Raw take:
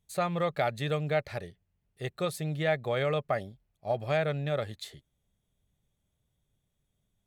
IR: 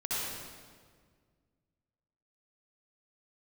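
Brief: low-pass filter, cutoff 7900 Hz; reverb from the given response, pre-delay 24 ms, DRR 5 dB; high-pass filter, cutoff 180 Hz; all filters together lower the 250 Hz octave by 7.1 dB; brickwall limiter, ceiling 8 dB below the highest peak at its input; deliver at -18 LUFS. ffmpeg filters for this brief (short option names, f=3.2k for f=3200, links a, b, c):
-filter_complex "[0:a]highpass=180,lowpass=7.9k,equalizer=f=250:t=o:g=-8.5,alimiter=limit=-23.5dB:level=0:latency=1,asplit=2[a][b];[1:a]atrim=start_sample=2205,adelay=24[c];[b][c]afir=irnorm=-1:irlink=0,volume=-11.5dB[d];[a][d]amix=inputs=2:normalize=0,volume=17.5dB"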